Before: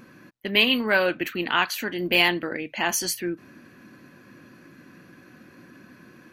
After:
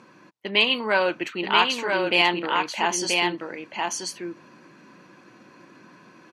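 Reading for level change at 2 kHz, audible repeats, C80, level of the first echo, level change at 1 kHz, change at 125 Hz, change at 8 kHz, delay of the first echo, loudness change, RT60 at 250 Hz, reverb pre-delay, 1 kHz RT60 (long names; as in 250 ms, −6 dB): 0.0 dB, 1, no reverb audible, −3.5 dB, +5.5 dB, −2.5 dB, +0.5 dB, 982 ms, +0.5 dB, no reverb audible, no reverb audible, no reverb audible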